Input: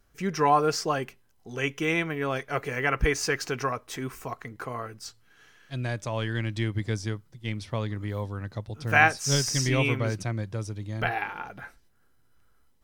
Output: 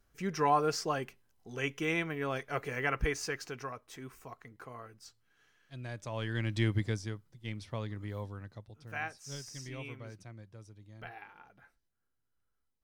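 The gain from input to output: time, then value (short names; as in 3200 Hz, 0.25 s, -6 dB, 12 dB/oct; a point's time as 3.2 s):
2.86 s -6 dB
3.63 s -12.5 dB
5.8 s -12.5 dB
6.72 s 0 dB
7.05 s -8 dB
8.27 s -8 dB
8.92 s -19 dB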